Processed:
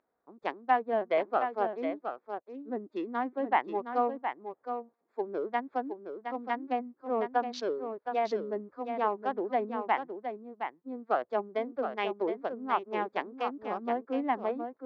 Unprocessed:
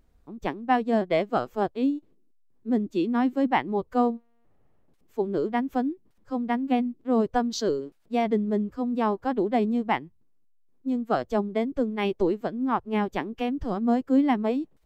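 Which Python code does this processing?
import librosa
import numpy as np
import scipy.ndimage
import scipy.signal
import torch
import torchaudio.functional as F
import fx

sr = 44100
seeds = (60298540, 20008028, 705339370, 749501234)

p1 = fx.wiener(x, sr, points=15)
p2 = scipy.signal.sosfilt(scipy.signal.butter(2, 4400.0, 'lowpass', fs=sr, output='sos'), p1)
p3 = fx.env_lowpass_down(p2, sr, base_hz=2100.0, full_db=-20.0)
p4 = scipy.signal.sosfilt(scipy.signal.butter(2, 530.0, 'highpass', fs=sr, output='sos'), p3)
p5 = p4 + fx.echo_single(p4, sr, ms=717, db=-7.5, dry=0)
y = p5 * 10.0 ** (-1.0 / 20.0)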